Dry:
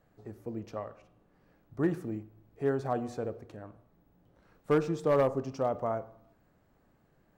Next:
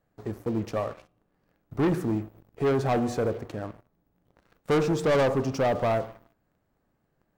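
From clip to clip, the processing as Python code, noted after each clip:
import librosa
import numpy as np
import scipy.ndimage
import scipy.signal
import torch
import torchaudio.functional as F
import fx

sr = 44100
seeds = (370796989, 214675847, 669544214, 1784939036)

y = fx.leveller(x, sr, passes=3)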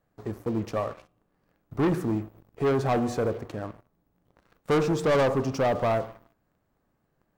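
y = fx.peak_eq(x, sr, hz=1100.0, db=2.5, octaves=0.39)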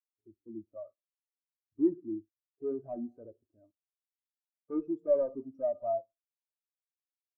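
y = x + 0.46 * np.pad(x, (int(3.2 * sr / 1000.0), 0))[:len(x)]
y = fx.spectral_expand(y, sr, expansion=2.5)
y = F.gain(torch.from_numpy(y), -3.0).numpy()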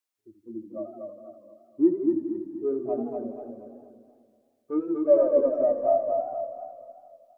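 y = fx.low_shelf(x, sr, hz=180.0, db=-10.0)
y = fx.echo_feedback(y, sr, ms=238, feedback_pct=44, wet_db=-4)
y = fx.echo_warbled(y, sr, ms=82, feedback_pct=76, rate_hz=2.8, cents=146, wet_db=-11)
y = F.gain(torch.from_numpy(y), 8.5).numpy()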